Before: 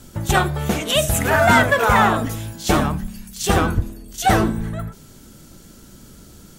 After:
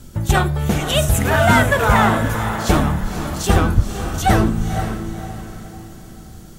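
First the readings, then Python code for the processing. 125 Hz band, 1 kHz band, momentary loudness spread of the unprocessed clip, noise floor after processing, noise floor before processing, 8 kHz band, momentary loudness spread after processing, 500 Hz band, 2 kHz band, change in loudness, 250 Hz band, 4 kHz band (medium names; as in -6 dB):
+5.0 dB, 0.0 dB, 15 LU, -38 dBFS, -45 dBFS, -0.5 dB, 17 LU, +0.5 dB, -0.5 dB, +1.0 dB, +2.5 dB, -0.5 dB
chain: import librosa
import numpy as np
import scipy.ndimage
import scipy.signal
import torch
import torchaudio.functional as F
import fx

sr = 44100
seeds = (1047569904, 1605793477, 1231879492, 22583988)

y = fx.low_shelf(x, sr, hz=160.0, db=8.0)
y = fx.echo_diffused(y, sr, ms=508, feedback_pct=41, wet_db=-9)
y = y * 10.0 ** (-1.0 / 20.0)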